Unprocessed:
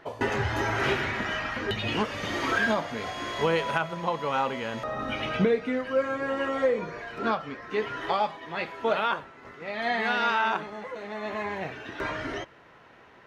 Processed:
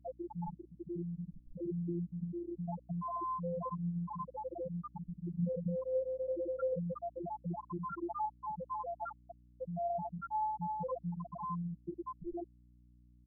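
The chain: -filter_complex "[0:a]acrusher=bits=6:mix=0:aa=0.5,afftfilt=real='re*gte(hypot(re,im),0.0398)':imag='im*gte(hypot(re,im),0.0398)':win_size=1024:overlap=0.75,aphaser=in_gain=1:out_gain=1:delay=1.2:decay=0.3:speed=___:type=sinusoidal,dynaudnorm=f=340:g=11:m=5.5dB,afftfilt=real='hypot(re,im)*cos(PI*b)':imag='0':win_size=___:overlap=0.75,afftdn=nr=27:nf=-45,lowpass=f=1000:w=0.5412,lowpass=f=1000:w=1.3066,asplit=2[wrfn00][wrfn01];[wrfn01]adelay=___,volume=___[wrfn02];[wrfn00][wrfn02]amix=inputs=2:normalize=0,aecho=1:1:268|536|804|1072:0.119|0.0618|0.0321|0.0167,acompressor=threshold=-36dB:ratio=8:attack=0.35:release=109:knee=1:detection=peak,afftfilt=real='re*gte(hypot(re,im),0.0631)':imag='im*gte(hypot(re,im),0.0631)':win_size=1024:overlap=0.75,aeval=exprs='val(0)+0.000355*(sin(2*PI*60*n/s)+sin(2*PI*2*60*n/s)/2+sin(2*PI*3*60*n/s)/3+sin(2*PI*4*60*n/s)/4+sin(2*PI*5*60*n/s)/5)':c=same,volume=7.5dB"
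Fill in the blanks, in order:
1.1, 1024, 34, -9dB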